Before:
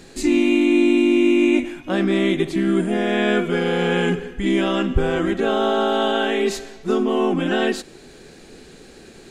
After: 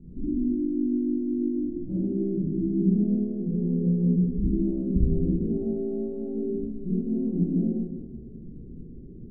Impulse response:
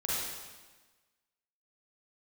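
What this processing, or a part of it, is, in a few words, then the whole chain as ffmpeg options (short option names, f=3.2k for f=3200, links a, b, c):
club heard from the street: -filter_complex "[0:a]alimiter=limit=-16.5dB:level=0:latency=1:release=198,lowpass=f=250:w=0.5412,lowpass=f=250:w=1.3066[a];[1:a]atrim=start_sample=2205[b];[a][b]afir=irnorm=-1:irlink=0,volume=1.5dB"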